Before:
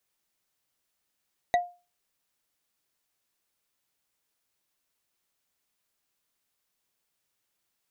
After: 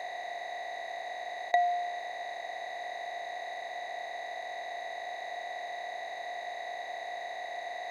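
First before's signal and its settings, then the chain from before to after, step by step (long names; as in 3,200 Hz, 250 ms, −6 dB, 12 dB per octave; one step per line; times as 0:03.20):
struck wood bar, lowest mode 707 Hz, decay 0.31 s, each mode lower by 6.5 dB, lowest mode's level −16.5 dB
compressor on every frequency bin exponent 0.2
three-way crossover with the lows and the highs turned down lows −23 dB, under 480 Hz, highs −14 dB, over 5,600 Hz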